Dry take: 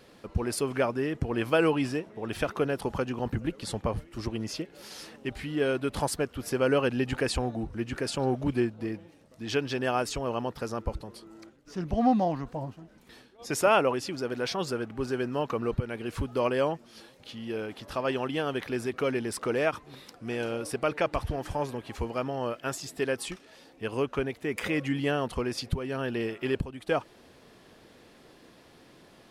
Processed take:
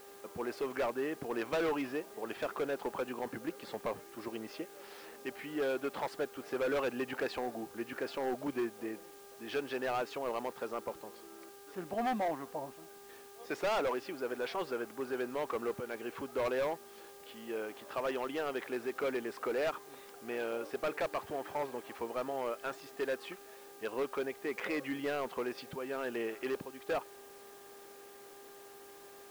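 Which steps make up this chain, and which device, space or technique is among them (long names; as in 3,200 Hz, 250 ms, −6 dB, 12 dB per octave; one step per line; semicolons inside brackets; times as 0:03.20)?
aircraft radio (band-pass filter 360–2,400 Hz; hard clipping −26.5 dBFS, distortion −9 dB; hum with harmonics 400 Hz, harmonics 4, −53 dBFS −7 dB per octave; white noise bed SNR 21 dB)
level −2.5 dB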